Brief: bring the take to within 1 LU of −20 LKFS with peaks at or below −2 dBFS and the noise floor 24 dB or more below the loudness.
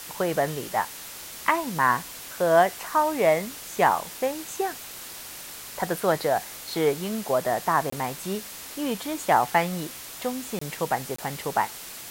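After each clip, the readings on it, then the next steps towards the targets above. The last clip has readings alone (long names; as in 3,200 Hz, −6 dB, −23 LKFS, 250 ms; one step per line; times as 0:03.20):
number of dropouts 3; longest dropout 24 ms; background noise floor −40 dBFS; target noise floor −50 dBFS; integrated loudness −26.0 LKFS; sample peak −5.0 dBFS; target loudness −20.0 LKFS
→ repair the gap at 0:07.90/0:10.59/0:11.16, 24 ms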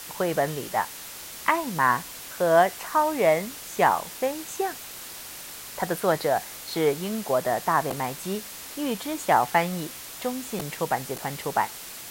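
number of dropouts 0; background noise floor −40 dBFS; target noise floor −50 dBFS
→ broadband denoise 10 dB, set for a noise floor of −40 dBFS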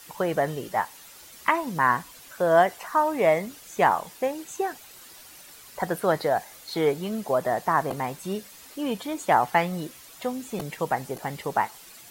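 background noise floor −48 dBFS; target noise floor −50 dBFS
→ broadband denoise 6 dB, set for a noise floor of −48 dBFS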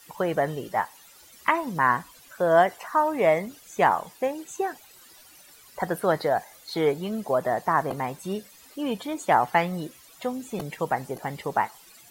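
background noise floor −52 dBFS; integrated loudness −26.0 LKFS; sample peak −5.5 dBFS; target loudness −20.0 LKFS
→ level +6 dB
brickwall limiter −2 dBFS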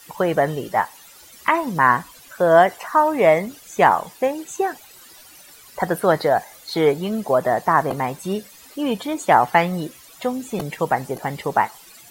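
integrated loudness −20.5 LKFS; sample peak −2.0 dBFS; background noise floor −46 dBFS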